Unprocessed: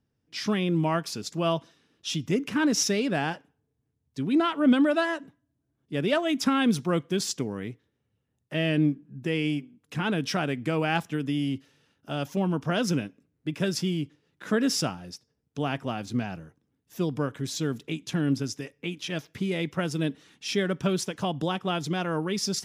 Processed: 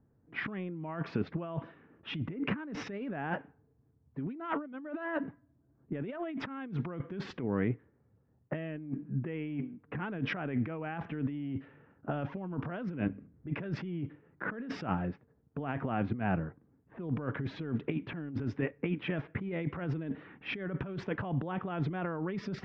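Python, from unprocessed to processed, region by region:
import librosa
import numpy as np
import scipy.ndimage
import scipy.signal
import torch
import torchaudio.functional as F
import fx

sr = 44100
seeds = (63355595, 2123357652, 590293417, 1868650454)

y = fx.chain(x, sr, fx.low_shelf(hz=170.0, db=9.5),
    fx.hum_notches(base_hz=50, count=5), at=(13.06, 13.5))
y = fx.env_lowpass(y, sr, base_hz=1200.0, full_db=-23.5)
y = scipy.signal.sosfilt(scipy.signal.butter(4, 2100.0, 'lowpass', fs=sr, output='sos'), y)
y = fx.over_compress(y, sr, threshold_db=-36.0, ratio=-1.0)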